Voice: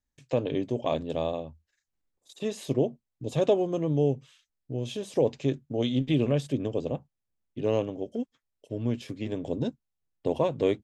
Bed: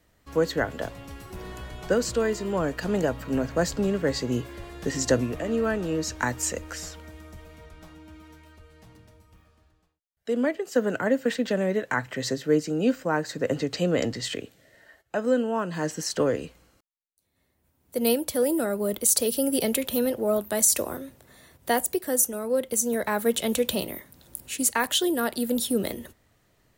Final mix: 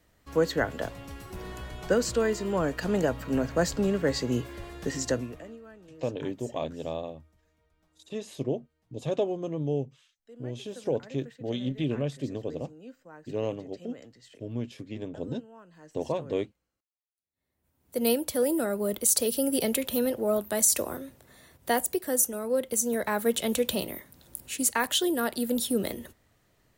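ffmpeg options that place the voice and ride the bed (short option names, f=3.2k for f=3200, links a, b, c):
-filter_complex "[0:a]adelay=5700,volume=-4.5dB[a];[1:a]volume=20.5dB,afade=t=out:st=4.69:d=0.9:silence=0.0749894,afade=t=in:st=17.32:d=0.56:silence=0.0841395[b];[a][b]amix=inputs=2:normalize=0"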